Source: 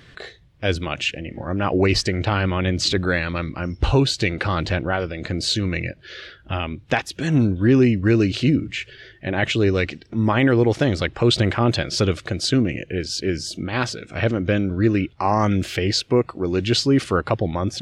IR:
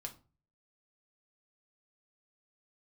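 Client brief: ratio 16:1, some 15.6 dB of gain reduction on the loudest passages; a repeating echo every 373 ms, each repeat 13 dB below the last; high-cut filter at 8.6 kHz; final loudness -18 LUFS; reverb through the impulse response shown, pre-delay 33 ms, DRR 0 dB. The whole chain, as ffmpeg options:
-filter_complex "[0:a]lowpass=8600,acompressor=threshold=0.0398:ratio=16,aecho=1:1:373|746|1119:0.224|0.0493|0.0108,asplit=2[s0][s1];[1:a]atrim=start_sample=2205,adelay=33[s2];[s1][s2]afir=irnorm=-1:irlink=0,volume=1.41[s3];[s0][s3]amix=inputs=2:normalize=0,volume=3.76"

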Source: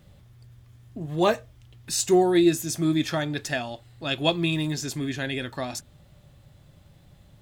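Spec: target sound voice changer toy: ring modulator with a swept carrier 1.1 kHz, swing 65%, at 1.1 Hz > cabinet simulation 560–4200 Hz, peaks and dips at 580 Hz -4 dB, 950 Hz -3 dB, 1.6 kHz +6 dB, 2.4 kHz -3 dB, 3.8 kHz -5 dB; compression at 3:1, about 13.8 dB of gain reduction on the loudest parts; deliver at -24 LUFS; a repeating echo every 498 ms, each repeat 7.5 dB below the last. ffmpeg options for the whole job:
-af "acompressor=threshold=0.02:ratio=3,aecho=1:1:498|996|1494|1992|2490:0.422|0.177|0.0744|0.0312|0.0131,aeval=exprs='val(0)*sin(2*PI*1100*n/s+1100*0.65/1.1*sin(2*PI*1.1*n/s))':c=same,highpass=560,equalizer=f=580:t=q:w=4:g=-4,equalizer=f=950:t=q:w=4:g=-3,equalizer=f=1600:t=q:w=4:g=6,equalizer=f=2400:t=q:w=4:g=-3,equalizer=f=3800:t=q:w=4:g=-5,lowpass=f=4200:w=0.5412,lowpass=f=4200:w=1.3066,volume=5.01"

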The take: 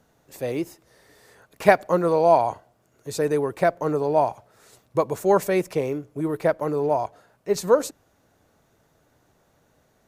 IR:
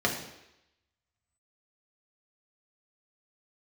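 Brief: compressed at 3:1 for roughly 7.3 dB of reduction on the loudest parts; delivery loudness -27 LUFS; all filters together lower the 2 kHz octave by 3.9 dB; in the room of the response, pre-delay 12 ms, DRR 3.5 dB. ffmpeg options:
-filter_complex "[0:a]equalizer=f=2000:t=o:g=-5,acompressor=threshold=0.1:ratio=3,asplit=2[s0][s1];[1:a]atrim=start_sample=2205,adelay=12[s2];[s1][s2]afir=irnorm=-1:irlink=0,volume=0.178[s3];[s0][s3]amix=inputs=2:normalize=0,volume=0.75"

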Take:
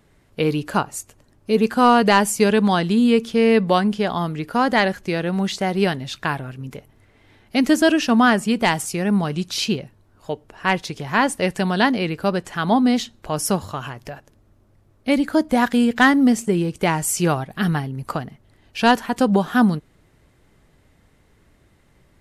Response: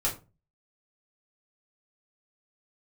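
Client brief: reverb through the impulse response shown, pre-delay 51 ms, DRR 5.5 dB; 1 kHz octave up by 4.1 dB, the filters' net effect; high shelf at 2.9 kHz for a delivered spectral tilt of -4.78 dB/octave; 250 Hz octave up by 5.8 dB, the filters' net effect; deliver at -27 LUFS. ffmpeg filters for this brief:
-filter_complex "[0:a]equalizer=f=250:t=o:g=6.5,equalizer=f=1000:t=o:g=4,highshelf=f=2900:g=7,asplit=2[s0][s1];[1:a]atrim=start_sample=2205,adelay=51[s2];[s1][s2]afir=irnorm=-1:irlink=0,volume=0.224[s3];[s0][s3]amix=inputs=2:normalize=0,volume=0.224"

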